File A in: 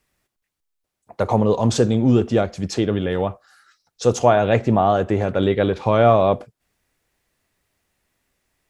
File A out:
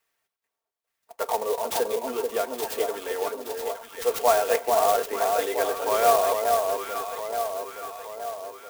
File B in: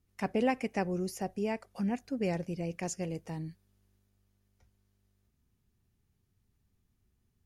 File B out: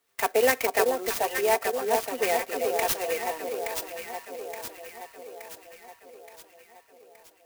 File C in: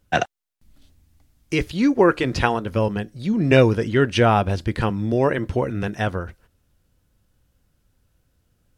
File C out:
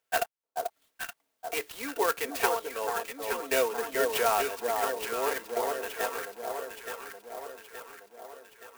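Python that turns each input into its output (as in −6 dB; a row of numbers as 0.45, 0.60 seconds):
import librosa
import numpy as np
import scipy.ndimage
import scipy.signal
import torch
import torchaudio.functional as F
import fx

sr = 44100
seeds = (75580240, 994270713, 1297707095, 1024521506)

y = scipy.signal.sosfilt(scipy.signal.bessel(8, 620.0, 'highpass', norm='mag', fs=sr, output='sos'), x)
y = y + 0.68 * np.pad(y, (int(4.4 * sr / 1000.0), 0))[:len(y)]
y = fx.echo_alternate(y, sr, ms=436, hz=1100.0, feedback_pct=73, wet_db=-3.0)
y = fx.clock_jitter(y, sr, seeds[0], jitter_ms=0.052)
y = librosa.util.normalize(y) * 10.0 ** (-9 / 20.0)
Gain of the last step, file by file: −4.5, +12.0, −7.5 decibels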